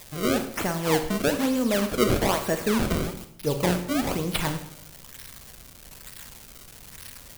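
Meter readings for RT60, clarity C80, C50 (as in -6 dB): 0.75 s, 13.0 dB, 10.0 dB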